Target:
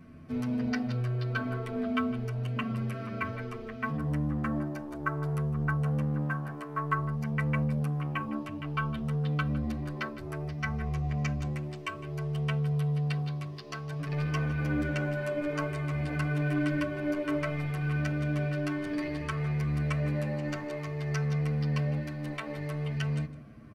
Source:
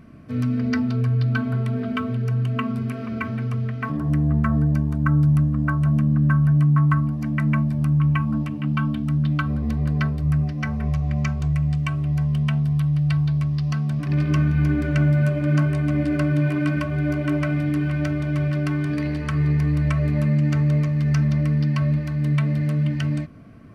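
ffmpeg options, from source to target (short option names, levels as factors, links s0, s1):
-filter_complex "[0:a]acrossover=split=350[s0][s1];[s0]asoftclip=type=tanh:threshold=0.0473[s2];[s2][s1]amix=inputs=2:normalize=0,asplit=2[s3][s4];[s4]adelay=157.4,volume=0.158,highshelf=f=4000:g=-3.54[s5];[s3][s5]amix=inputs=2:normalize=0,asplit=2[s6][s7];[s7]adelay=8.6,afreqshift=-0.57[s8];[s6][s8]amix=inputs=2:normalize=1,volume=0.841"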